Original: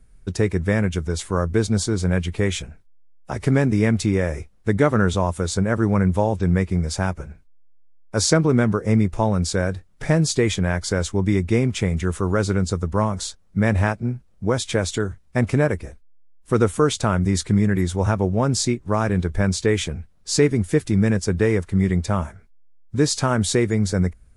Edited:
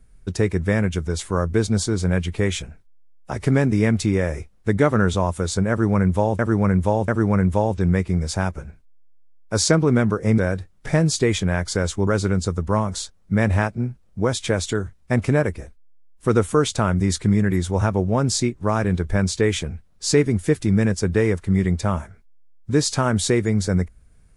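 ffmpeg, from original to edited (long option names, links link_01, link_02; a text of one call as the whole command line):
ffmpeg -i in.wav -filter_complex "[0:a]asplit=5[link_01][link_02][link_03][link_04][link_05];[link_01]atrim=end=6.392[link_06];[link_02]atrim=start=5.698:end=6.392[link_07];[link_03]atrim=start=5.698:end=9.002[link_08];[link_04]atrim=start=9.538:end=11.232[link_09];[link_05]atrim=start=12.318[link_10];[link_06][link_07]acrossfade=duration=0.004:curve1=hsin:curve2=hsin[link_11];[link_11][link_08]acrossfade=duration=0.004:curve1=hsin:curve2=hsin[link_12];[link_12][link_09]acrossfade=duration=0.004:curve1=hsin:curve2=hsin[link_13];[link_13][link_10]acrossfade=duration=0.004:curve1=hsin:curve2=hsin" out.wav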